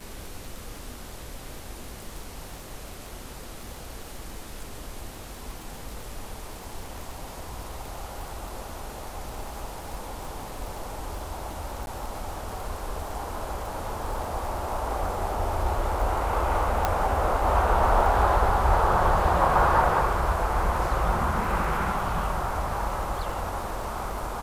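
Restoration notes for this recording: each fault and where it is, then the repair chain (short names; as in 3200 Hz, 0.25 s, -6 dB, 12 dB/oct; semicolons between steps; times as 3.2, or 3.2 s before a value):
crackle 29/s -33 dBFS
11.86–11.87 gap 11 ms
16.85 pop -9 dBFS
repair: de-click; interpolate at 11.86, 11 ms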